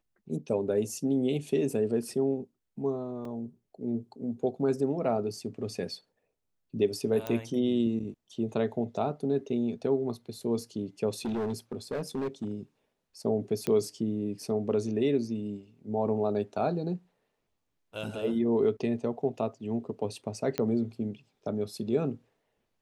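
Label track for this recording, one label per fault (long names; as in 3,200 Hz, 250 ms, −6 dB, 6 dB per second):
3.250000	3.250000	drop-out 2.2 ms
7.270000	7.270000	click −18 dBFS
11.250000	12.520000	clipping −28 dBFS
13.670000	13.670000	click −16 dBFS
20.580000	20.580000	click −14 dBFS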